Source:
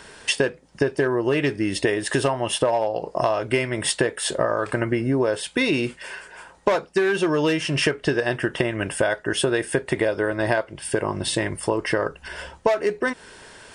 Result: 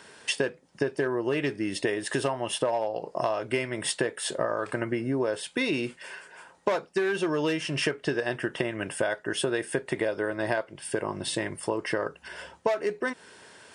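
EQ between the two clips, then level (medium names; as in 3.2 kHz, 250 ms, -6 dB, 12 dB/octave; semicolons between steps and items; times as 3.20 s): high-pass 120 Hz 12 dB/octave; -6.0 dB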